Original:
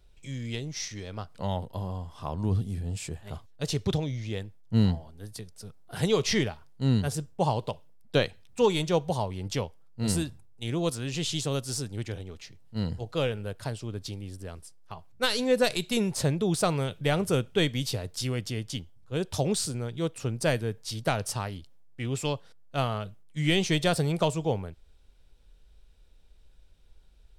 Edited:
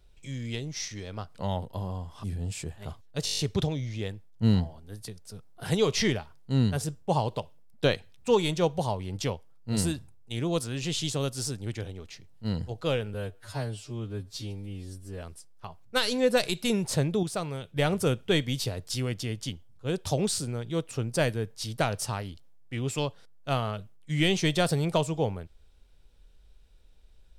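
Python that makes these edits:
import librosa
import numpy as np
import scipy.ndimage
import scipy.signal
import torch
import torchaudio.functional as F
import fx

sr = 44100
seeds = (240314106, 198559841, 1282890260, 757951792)

y = fx.edit(x, sr, fx.cut(start_s=2.24, length_s=0.45),
    fx.stutter(start_s=3.7, slice_s=0.02, count=8),
    fx.stretch_span(start_s=13.45, length_s=1.04, factor=2.0),
    fx.clip_gain(start_s=16.5, length_s=0.53, db=-6.5), tone=tone)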